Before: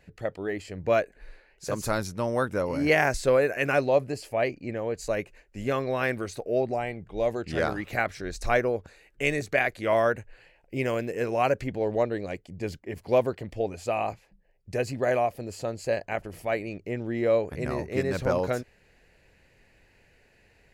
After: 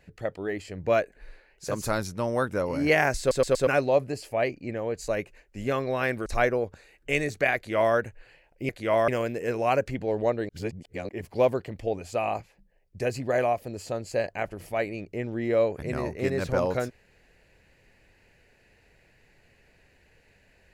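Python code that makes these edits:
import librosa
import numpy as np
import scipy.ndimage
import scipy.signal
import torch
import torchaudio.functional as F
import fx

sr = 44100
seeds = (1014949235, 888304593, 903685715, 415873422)

y = fx.edit(x, sr, fx.stutter_over(start_s=3.19, slice_s=0.12, count=4),
    fx.cut(start_s=6.26, length_s=2.12),
    fx.duplicate(start_s=9.68, length_s=0.39, to_s=10.81),
    fx.reverse_span(start_s=12.22, length_s=0.6), tone=tone)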